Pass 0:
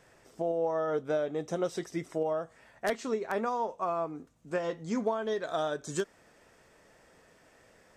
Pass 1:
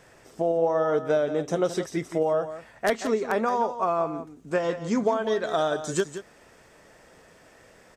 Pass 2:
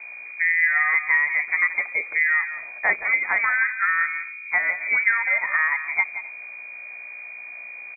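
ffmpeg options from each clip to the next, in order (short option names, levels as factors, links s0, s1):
-af "aecho=1:1:174:0.266,volume=2.11"
-af "aeval=exprs='val(0)+0.01*(sin(2*PI*60*n/s)+sin(2*PI*2*60*n/s)/2+sin(2*PI*3*60*n/s)/3+sin(2*PI*4*60*n/s)/4+sin(2*PI*5*60*n/s)/5)':c=same,lowpass=f=2100:t=q:w=0.5098,lowpass=f=2100:t=q:w=0.6013,lowpass=f=2100:t=q:w=0.9,lowpass=f=2100:t=q:w=2.563,afreqshift=-2500,aecho=1:1:259:0.0708,volume=1.41"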